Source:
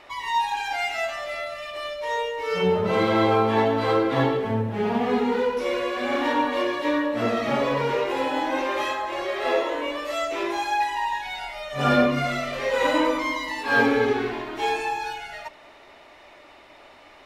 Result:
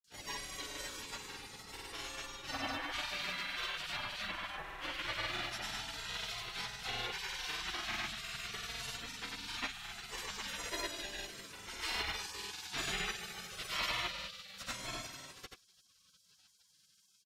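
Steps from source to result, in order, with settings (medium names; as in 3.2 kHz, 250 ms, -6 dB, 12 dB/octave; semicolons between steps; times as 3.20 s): spectral gate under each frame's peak -25 dB weak; granulator, pitch spread up and down by 0 st; trim +3 dB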